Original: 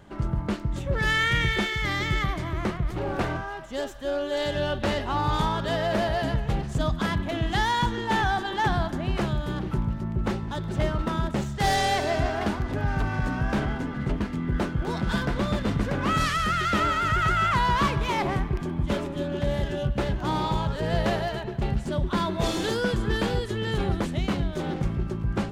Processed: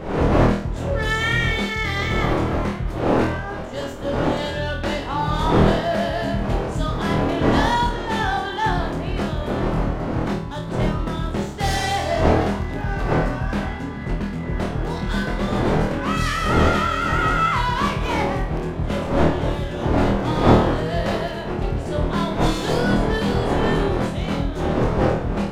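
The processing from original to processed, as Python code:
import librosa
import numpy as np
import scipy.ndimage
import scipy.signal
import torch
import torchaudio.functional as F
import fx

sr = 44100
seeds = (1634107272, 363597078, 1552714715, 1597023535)

y = fx.dmg_wind(x, sr, seeds[0], corner_hz=570.0, level_db=-27.0)
y = fx.room_flutter(y, sr, wall_m=4.3, rt60_s=0.42)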